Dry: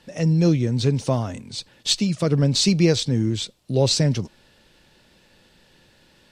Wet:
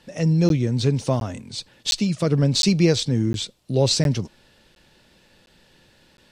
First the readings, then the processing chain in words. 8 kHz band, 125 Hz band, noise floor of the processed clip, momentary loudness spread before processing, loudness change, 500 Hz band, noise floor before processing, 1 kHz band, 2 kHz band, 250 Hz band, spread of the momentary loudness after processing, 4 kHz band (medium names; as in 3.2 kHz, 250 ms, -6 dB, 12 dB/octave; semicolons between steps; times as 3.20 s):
-0.5 dB, 0.0 dB, -58 dBFS, 11 LU, 0.0 dB, 0.0 dB, -57 dBFS, 0.0 dB, 0.0 dB, 0.0 dB, 11 LU, -0.5 dB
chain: crackling interface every 0.71 s, samples 512, zero, from 0.49 s